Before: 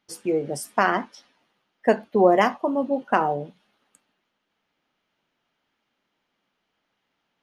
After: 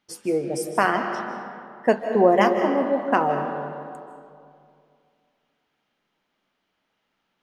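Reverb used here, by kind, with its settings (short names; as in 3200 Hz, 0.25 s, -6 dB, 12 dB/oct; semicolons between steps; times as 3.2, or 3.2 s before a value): digital reverb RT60 2.4 s, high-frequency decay 0.5×, pre-delay 0.115 s, DRR 6 dB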